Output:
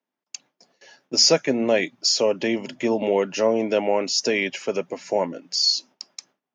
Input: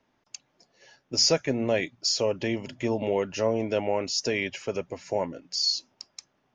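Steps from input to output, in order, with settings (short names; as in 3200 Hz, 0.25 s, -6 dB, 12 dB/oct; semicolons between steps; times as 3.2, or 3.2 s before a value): gate with hold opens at -50 dBFS; HPF 170 Hz 24 dB/oct; gain +5.5 dB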